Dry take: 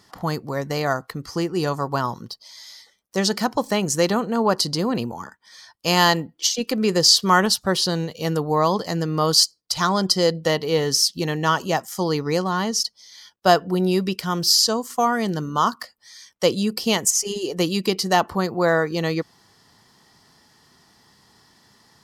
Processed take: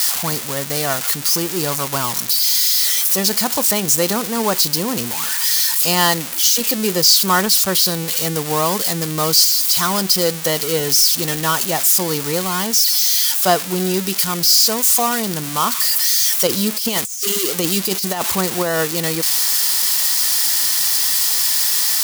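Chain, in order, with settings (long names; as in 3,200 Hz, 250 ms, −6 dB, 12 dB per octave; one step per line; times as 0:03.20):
spike at every zero crossing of −9 dBFS
0:16.47–0:18.88: compressor whose output falls as the input rises −18 dBFS, ratio −0.5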